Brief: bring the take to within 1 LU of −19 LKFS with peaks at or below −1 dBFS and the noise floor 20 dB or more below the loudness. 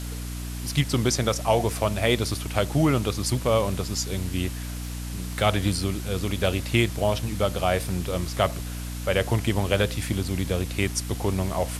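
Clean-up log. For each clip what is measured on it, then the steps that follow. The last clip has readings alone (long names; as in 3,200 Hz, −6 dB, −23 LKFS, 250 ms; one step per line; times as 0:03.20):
mains hum 60 Hz; hum harmonics up to 300 Hz; level of the hum −31 dBFS; background noise floor −33 dBFS; target noise floor −46 dBFS; integrated loudness −25.5 LKFS; sample peak −4.5 dBFS; target loudness −19.0 LKFS
→ hum removal 60 Hz, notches 5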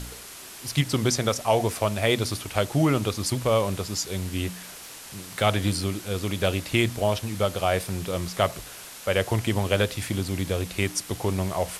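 mains hum none found; background noise floor −42 dBFS; target noise floor −46 dBFS
→ broadband denoise 6 dB, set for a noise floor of −42 dBFS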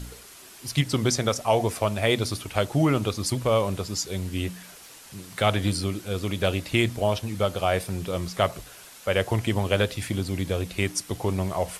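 background noise floor −47 dBFS; integrated loudness −26.0 LKFS; sample peak −5.5 dBFS; target loudness −19.0 LKFS
→ level +7 dB
brickwall limiter −1 dBFS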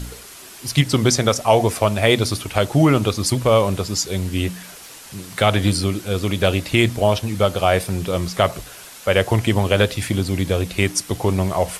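integrated loudness −19.0 LKFS; sample peak −1.0 dBFS; background noise floor −40 dBFS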